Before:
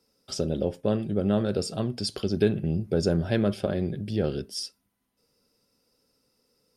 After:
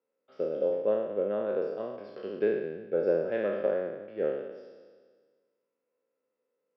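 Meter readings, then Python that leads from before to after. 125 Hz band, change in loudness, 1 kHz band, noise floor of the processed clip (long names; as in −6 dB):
−21.5 dB, −3.0 dB, −3.5 dB, −84 dBFS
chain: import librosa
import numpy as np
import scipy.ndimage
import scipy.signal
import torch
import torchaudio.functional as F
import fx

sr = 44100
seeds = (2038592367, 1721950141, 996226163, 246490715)

y = fx.spec_trails(x, sr, decay_s=1.7)
y = fx.cabinet(y, sr, low_hz=400.0, low_slope=12, high_hz=2200.0, hz=(520.0, 780.0, 1400.0), db=(7, -4, -3))
y = fx.upward_expand(y, sr, threshold_db=-35.0, expansion=1.5)
y = y * librosa.db_to_amplitude(-3.5)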